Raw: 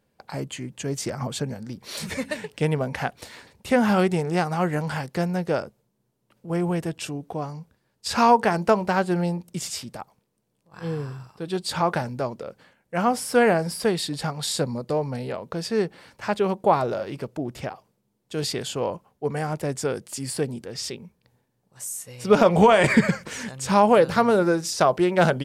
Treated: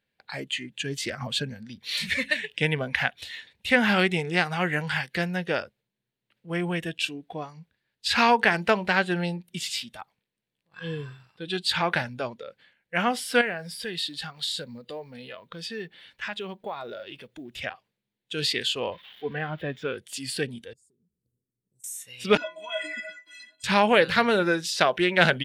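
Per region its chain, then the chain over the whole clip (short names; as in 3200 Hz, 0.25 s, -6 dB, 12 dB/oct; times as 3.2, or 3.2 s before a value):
13.41–17.64 compressor 2:1, threshold -35 dBFS + companded quantiser 8-bit
18.92–19.98 switching spikes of -26 dBFS + air absorption 350 m + upward compressor, threshold -41 dBFS
20.73–21.84 Chebyshev band-stop 400–8000 Hz, order 3 + compressor 12:1, threshold -54 dBFS
22.37–23.64 HPF 210 Hz 24 dB/oct + metallic resonator 300 Hz, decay 0.31 s, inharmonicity 0.03
whole clip: spectral noise reduction 10 dB; band shelf 2600 Hz +13 dB; gain -4 dB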